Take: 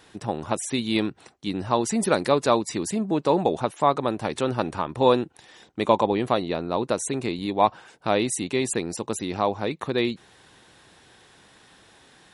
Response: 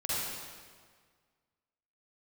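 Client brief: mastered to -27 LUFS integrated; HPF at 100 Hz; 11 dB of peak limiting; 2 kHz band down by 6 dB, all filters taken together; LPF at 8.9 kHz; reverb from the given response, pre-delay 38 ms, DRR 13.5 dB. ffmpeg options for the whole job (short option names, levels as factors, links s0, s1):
-filter_complex "[0:a]highpass=100,lowpass=8900,equalizer=f=2000:t=o:g=-8,alimiter=limit=0.168:level=0:latency=1,asplit=2[s0][s1];[1:a]atrim=start_sample=2205,adelay=38[s2];[s1][s2]afir=irnorm=-1:irlink=0,volume=0.0944[s3];[s0][s3]amix=inputs=2:normalize=0,volume=1.26"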